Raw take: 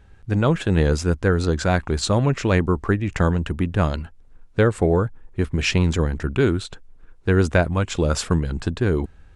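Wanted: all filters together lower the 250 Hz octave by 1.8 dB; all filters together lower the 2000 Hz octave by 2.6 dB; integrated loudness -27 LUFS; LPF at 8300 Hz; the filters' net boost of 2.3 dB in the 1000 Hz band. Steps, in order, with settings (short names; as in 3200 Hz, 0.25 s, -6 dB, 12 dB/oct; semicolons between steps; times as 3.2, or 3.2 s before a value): LPF 8300 Hz; bell 250 Hz -3 dB; bell 1000 Hz +5 dB; bell 2000 Hz -6 dB; gain -5 dB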